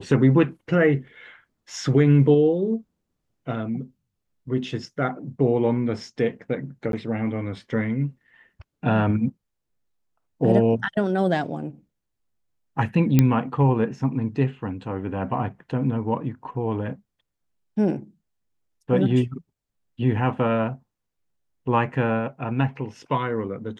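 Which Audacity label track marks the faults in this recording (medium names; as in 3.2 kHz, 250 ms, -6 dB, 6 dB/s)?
6.920000	6.930000	dropout 12 ms
13.190000	13.190000	pop -4 dBFS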